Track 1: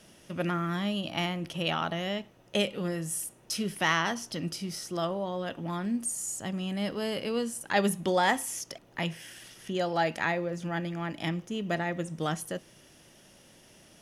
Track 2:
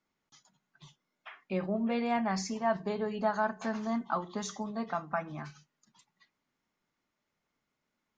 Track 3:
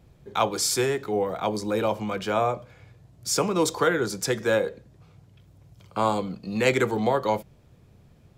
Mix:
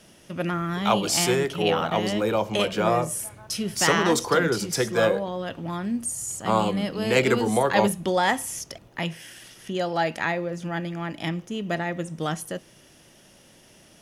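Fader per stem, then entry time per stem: +3.0, -19.0, +1.0 dB; 0.00, 0.00, 0.50 s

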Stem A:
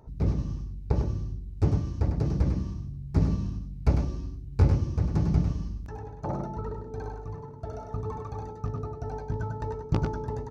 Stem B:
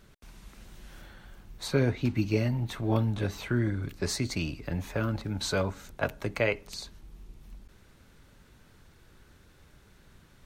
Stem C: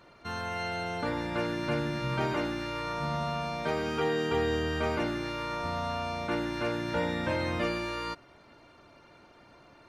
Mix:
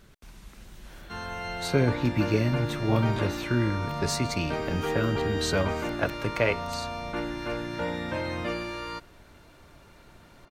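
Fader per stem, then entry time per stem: off, +2.0 dB, -1.0 dB; off, 0.00 s, 0.85 s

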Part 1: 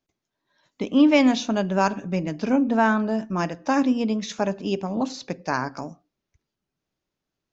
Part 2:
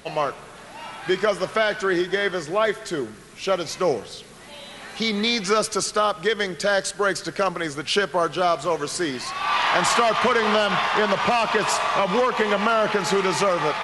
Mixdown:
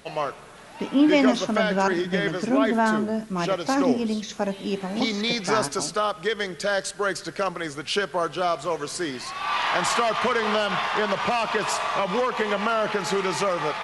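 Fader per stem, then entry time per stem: -2.0, -3.5 dB; 0.00, 0.00 s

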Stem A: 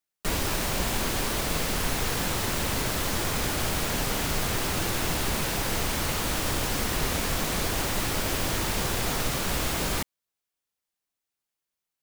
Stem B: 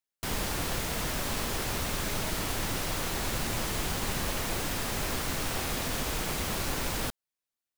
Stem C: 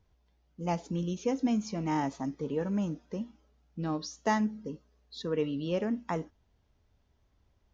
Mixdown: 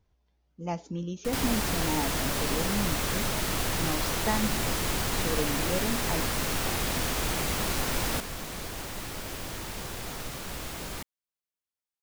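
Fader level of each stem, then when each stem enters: -9.5, +2.0, -1.5 dB; 1.00, 1.10, 0.00 s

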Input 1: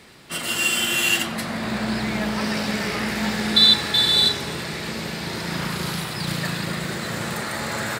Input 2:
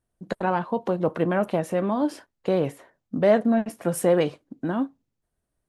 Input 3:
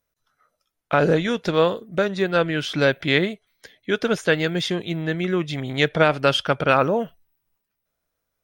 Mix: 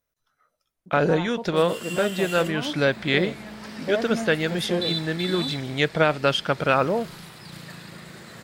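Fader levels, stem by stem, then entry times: -14.5, -9.0, -2.5 dB; 1.25, 0.65, 0.00 s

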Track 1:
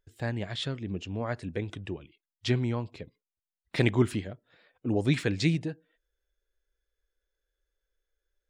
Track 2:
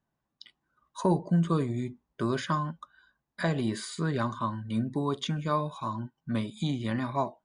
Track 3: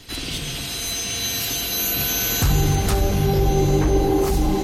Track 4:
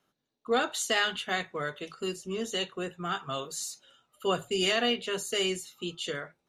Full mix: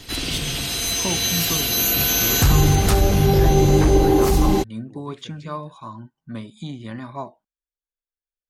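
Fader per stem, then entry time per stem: -19.0 dB, -2.5 dB, +3.0 dB, off; 0.00 s, 0.00 s, 0.00 s, off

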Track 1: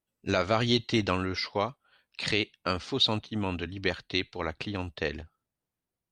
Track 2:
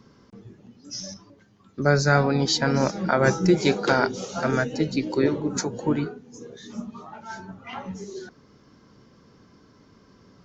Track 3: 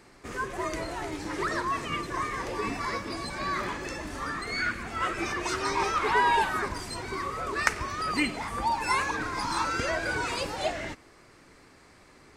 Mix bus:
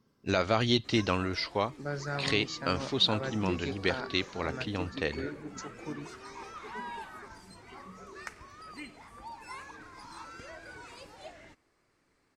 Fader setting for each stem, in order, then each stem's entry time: -1.0, -16.5, -17.5 dB; 0.00, 0.00, 0.60 s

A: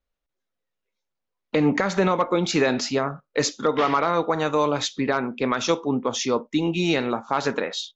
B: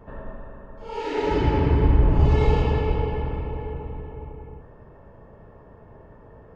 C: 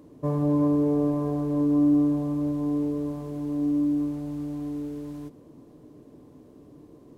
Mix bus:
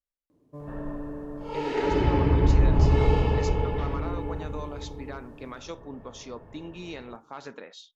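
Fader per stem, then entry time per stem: -17.0, -2.0, -15.0 dB; 0.00, 0.60, 0.30 s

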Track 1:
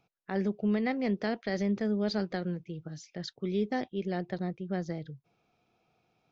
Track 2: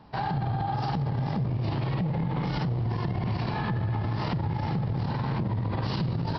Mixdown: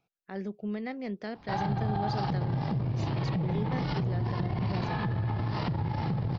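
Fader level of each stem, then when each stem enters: -6.0, -2.0 dB; 0.00, 1.35 s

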